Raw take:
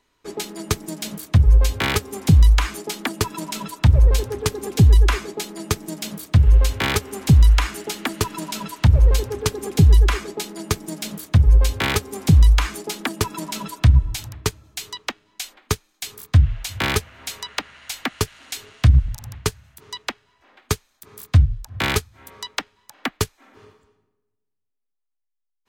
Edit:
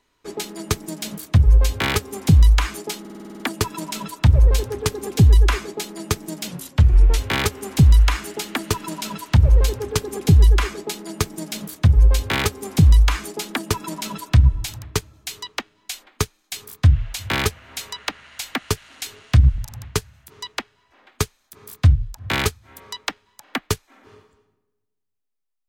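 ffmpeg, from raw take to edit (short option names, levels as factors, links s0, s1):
-filter_complex "[0:a]asplit=11[s0][s1][s2][s3][s4][s5][s6][s7][s8][s9][s10];[s0]atrim=end=3.052[s11];[s1]atrim=start=2.998:end=3.052[s12];[s2]atrim=start=2.998:end=3.052[s13];[s3]atrim=start=2.998:end=3.052[s14];[s4]atrim=start=2.998:end=3.052[s15];[s5]atrim=start=2.998:end=3.052[s16];[s6]atrim=start=2.998:end=3.052[s17];[s7]atrim=start=2.998:end=3.052[s18];[s8]atrim=start=2.998:end=6.084[s19];[s9]atrim=start=6.08:end=6.68,asetpts=PTS-STARTPTS,asetrate=37926,aresample=44100,atrim=end_sample=30767,asetpts=PTS-STARTPTS[s20];[s10]atrim=start=6.676[s21];[s11][s12]acrossfade=d=0.004:c1=hsin:c2=hsin[s22];[s22][s13]acrossfade=d=0.004:c1=hsin:c2=hsin[s23];[s23][s14]acrossfade=d=0.004:c1=hsin:c2=hsin[s24];[s24][s15]acrossfade=d=0.004:c1=hsin:c2=hsin[s25];[s25][s16]acrossfade=d=0.004:c1=hsin:c2=hsin[s26];[s26][s17]acrossfade=d=0.004:c1=hsin:c2=hsin[s27];[s27][s18]acrossfade=d=0.004:c1=hsin:c2=hsin[s28];[s28][s19]acrossfade=d=0.004:c1=hsin:c2=hsin[s29];[s29][s20]acrossfade=d=0.004:c1=hsin:c2=hsin[s30];[s30][s21]acrossfade=d=0.004:c1=hsin:c2=hsin"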